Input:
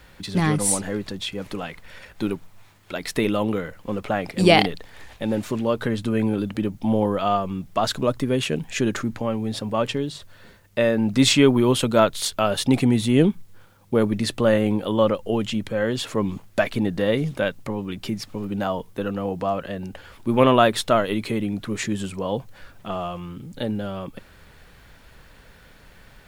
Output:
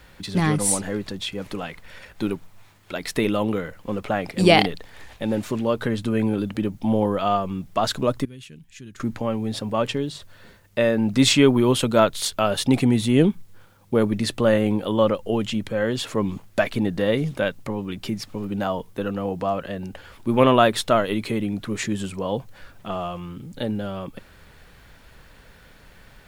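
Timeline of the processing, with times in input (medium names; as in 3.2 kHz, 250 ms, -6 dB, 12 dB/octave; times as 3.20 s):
8.25–9.00 s: amplifier tone stack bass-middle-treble 6-0-2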